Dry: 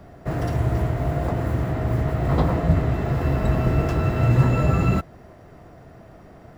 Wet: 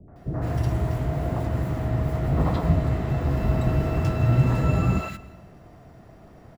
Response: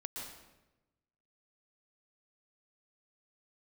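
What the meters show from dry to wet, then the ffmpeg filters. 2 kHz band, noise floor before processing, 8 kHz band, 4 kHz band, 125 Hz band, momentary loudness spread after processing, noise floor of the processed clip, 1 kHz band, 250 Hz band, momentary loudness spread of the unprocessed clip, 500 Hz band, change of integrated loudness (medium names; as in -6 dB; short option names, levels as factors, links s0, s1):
-4.0 dB, -47 dBFS, no reading, -2.0 dB, -2.0 dB, 7 LU, -49 dBFS, -3.5 dB, -2.5 dB, 6 LU, -3.5 dB, -2.0 dB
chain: -filter_complex "[0:a]acrossover=split=470|1600[s0][s1][s2];[s1]adelay=80[s3];[s2]adelay=160[s4];[s0][s3][s4]amix=inputs=3:normalize=0,asplit=2[s5][s6];[1:a]atrim=start_sample=2205[s7];[s6][s7]afir=irnorm=-1:irlink=0,volume=0.251[s8];[s5][s8]amix=inputs=2:normalize=0,volume=0.708"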